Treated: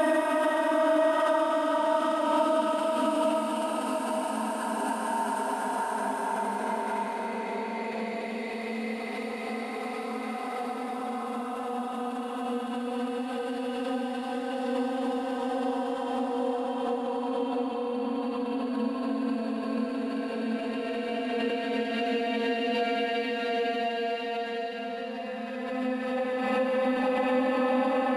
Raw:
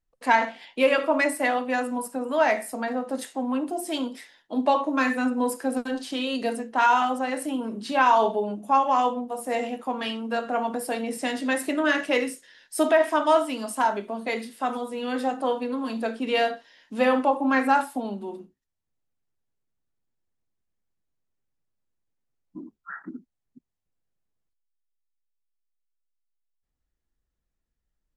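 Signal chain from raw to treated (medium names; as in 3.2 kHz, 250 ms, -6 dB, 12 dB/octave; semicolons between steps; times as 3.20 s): bass shelf 240 Hz +8.5 dB; Paulstretch 6.8×, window 1.00 s, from 13.01 s; swell ahead of each attack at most 25 dB/s; trim -6 dB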